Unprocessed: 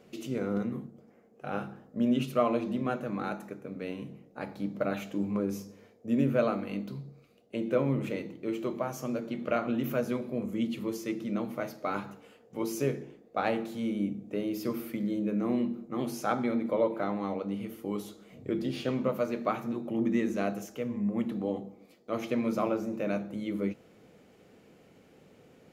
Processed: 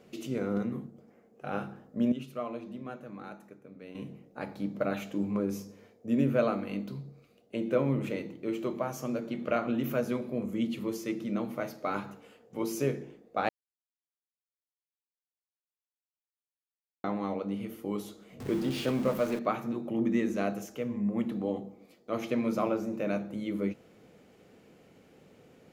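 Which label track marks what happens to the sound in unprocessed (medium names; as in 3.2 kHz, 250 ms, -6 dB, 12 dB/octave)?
2.120000	3.950000	gain -10 dB
13.490000	17.040000	mute
18.400000	19.390000	jump at every zero crossing of -37.5 dBFS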